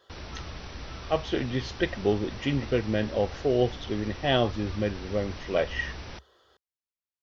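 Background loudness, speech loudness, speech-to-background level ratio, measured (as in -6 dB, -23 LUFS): -41.0 LUFS, -29.0 LUFS, 12.0 dB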